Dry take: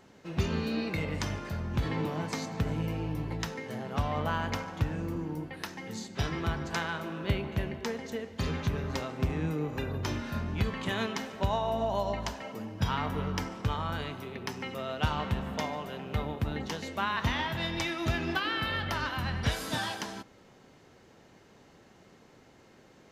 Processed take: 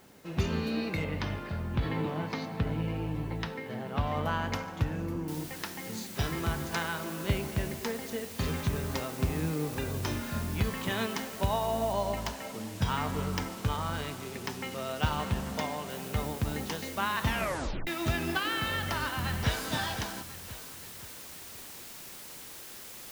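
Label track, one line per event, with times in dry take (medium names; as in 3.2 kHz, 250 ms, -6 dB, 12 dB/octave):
1.040000	4.070000	low-pass 4.4 kHz 24 dB/octave
5.280000	5.280000	noise floor step -64 dB -46 dB
11.930000	15.900000	careless resampling rate divided by 2×, down filtered, up hold
17.260000	17.260000	tape stop 0.61 s
18.720000	19.680000	echo throw 520 ms, feedback 45%, level -10 dB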